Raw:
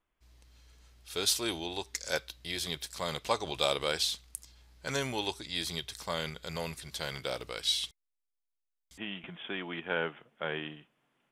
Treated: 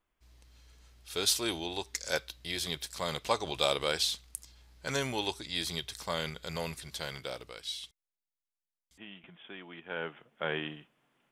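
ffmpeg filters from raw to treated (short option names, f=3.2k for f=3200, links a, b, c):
-af "volume=11.5dB,afade=t=out:st=6.75:d=0.92:silence=0.334965,afade=t=in:st=9.84:d=0.67:silence=0.281838"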